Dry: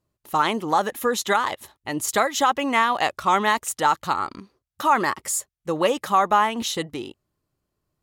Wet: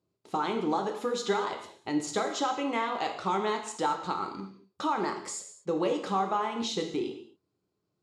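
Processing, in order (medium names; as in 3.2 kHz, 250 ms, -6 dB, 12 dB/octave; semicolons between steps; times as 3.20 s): compression 2:1, threshold -28 dBFS, peak gain reduction 8.5 dB; cabinet simulation 130–6900 Hz, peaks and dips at 400 Hz +6 dB, 570 Hz -4 dB, 1.1 kHz -4 dB, 1.8 kHz -9 dB, 2.9 kHz -5 dB, 6.1 kHz -5 dB; gated-style reverb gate 260 ms falling, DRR 3 dB; trim -2.5 dB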